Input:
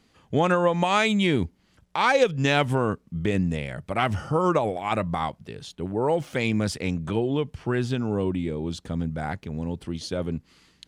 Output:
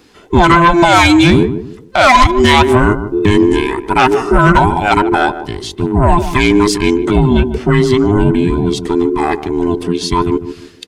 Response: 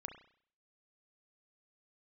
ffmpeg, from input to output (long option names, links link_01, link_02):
-filter_complex "[0:a]afftfilt=real='real(if(between(b,1,1008),(2*floor((b-1)/24)+1)*24-b,b),0)':imag='imag(if(between(b,1,1008),(2*floor((b-1)/24)+1)*24-b,b),0)*if(between(b,1,1008),-1,1)':win_size=2048:overlap=0.75,asplit=2[link_01][link_02];[link_02]adelay=150,lowpass=frequency=800:poles=1,volume=-10dB,asplit=2[link_03][link_04];[link_04]adelay=150,lowpass=frequency=800:poles=1,volume=0.32,asplit=2[link_05][link_06];[link_06]adelay=150,lowpass=frequency=800:poles=1,volume=0.32,asplit=2[link_07][link_08];[link_08]adelay=150,lowpass=frequency=800:poles=1,volume=0.32[link_09];[link_01][link_03][link_05][link_07][link_09]amix=inputs=5:normalize=0,aeval=exprs='0.398*sin(PI/2*1.78*val(0)/0.398)':channel_layout=same,volume=6.5dB"